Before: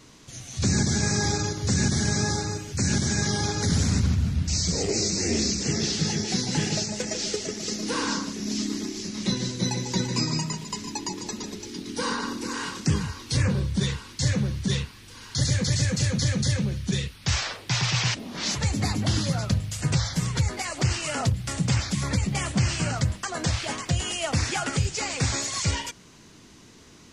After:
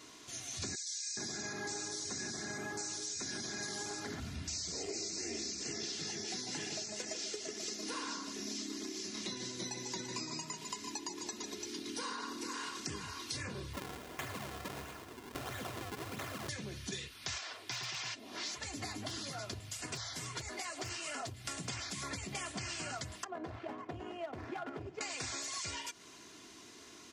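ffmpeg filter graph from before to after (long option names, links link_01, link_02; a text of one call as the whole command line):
ffmpeg -i in.wav -filter_complex "[0:a]asettb=1/sr,asplit=3[link_01][link_02][link_03];[link_01]atrim=end=0.754[link_04];[link_02]atrim=start=0.75:end=4.2,asetpts=PTS-STARTPTS,afade=type=in:duration=0.004:curve=qsin,afade=type=out:start_time=3.446:duration=0.004:curve=qsin,equalizer=frequency=81:width_type=o:width=0.72:gain=-11.5,bandreject=frequency=60:width_type=h:width=6,bandreject=frequency=120:width_type=h:width=6,bandreject=frequency=180:width_type=h:width=6,bandreject=frequency=240:width_type=h:width=6,bandreject=frequency=300:width_type=h:width=6,bandreject=frequency=360:width_type=h:width=6,bandreject=frequency=420:width_type=h:width=6,bandreject=frequency=480:width_type=h:width=6,bandreject=frequency=540:width_type=h:width=6,acrossover=split=2700[link_05][link_06];[link_05]adelay=420[link_07];[link_07][link_06]amix=inputs=2:normalize=0,atrim=end_sample=152145[link_08];[link_03]atrim=start=4.196[link_09];[link_04][link_08]acrossfade=duration=0.004:curve1=hsin:curve2=qsin[link_10];[link_10][link_09]acrossfade=duration=0.004:curve1=qsin:curve2=hsin,asettb=1/sr,asplit=3[link_11][link_12][link_13];[link_11]atrim=end=13.734[link_14];[link_12]atrim=start=13.73:end=16.49,asetpts=PTS-STARTPTS,afade=type=in:duration=0.004:curve=qsin,afade=type=out:start_time=2.756:duration=0.004:curve=qsin,acrusher=samples=41:mix=1:aa=0.000001:lfo=1:lforange=65.6:lforate=1.5,acompressor=threshold=-26dB:ratio=3:attack=3.2:release=140:knee=1:detection=peak,aecho=1:1:113|226|339|452|565|678:0.251|0.143|0.0816|0.0465|0.0265|0.0151,atrim=end_sample=121716[link_15];[link_13]atrim=start=16.486[link_16];[link_14][link_15]acrossfade=duration=0.004:curve1=hsin:curve2=qsin[link_17];[link_17][link_16]acrossfade=duration=0.004:curve1=qsin:curve2=hsin,asettb=1/sr,asplit=3[link_18][link_19][link_20];[link_18]atrim=end=17.384[link_21];[link_19]atrim=start=17.38:end=21.45,asetpts=PTS-STARTPTS,afade=type=in:duration=0.004:curve=qsin,afade=type=out:start_time=4.066:duration=0.004:curve=qsin,bandreject=frequency=180:width=6,flanger=delay=3.3:depth=7.7:regen=-37:speed=1.6:shape=triangular,aeval=exprs='0.106*(abs(mod(val(0)/0.106+3,4)-2)-1)':channel_layout=same[link_22];[link_20]atrim=start=21.446[link_23];[link_21][link_22]acrossfade=duration=0.004:curve1=hsin:curve2=qsin[link_24];[link_24][link_23]acrossfade=duration=0.004:curve1=qsin:curve2=hsin,asettb=1/sr,asplit=3[link_25][link_26][link_27];[link_25]atrim=end=23.244[link_28];[link_26]atrim=start=23.24:end=25.01,asetpts=PTS-STARTPTS,afade=type=in:duration=0.004:curve=qsin,afade=type=out:start_time=1.766:duration=0.004:curve=qsin,highpass=93,adynamicsmooth=sensitivity=0.5:basefreq=700,asoftclip=type=hard:threshold=-27dB[link_29];[link_27]atrim=start=25.006[link_30];[link_28][link_29]acrossfade=duration=0.004:curve1=hsin:curve2=qsin[link_31];[link_31][link_30]acrossfade=duration=0.004:curve1=qsin:curve2=hsin,highpass=frequency=390:poles=1,aecho=1:1:2.9:0.45,acompressor=threshold=-37dB:ratio=5,volume=-2dB" out.wav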